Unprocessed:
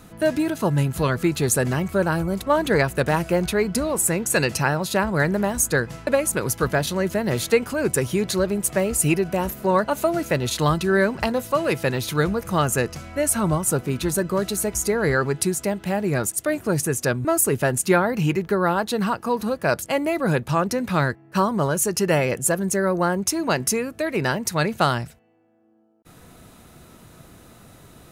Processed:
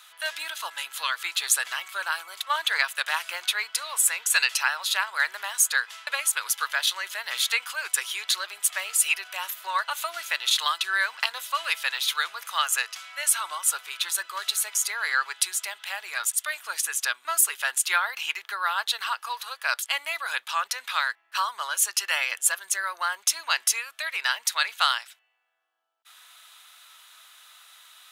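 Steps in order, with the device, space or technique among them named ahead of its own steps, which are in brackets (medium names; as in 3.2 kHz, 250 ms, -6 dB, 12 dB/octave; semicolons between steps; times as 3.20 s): headphones lying on a table (high-pass 1.1 kHz 24 dB/octave; peaking EQ 3.4 kHz +10 dB 0.6 oct)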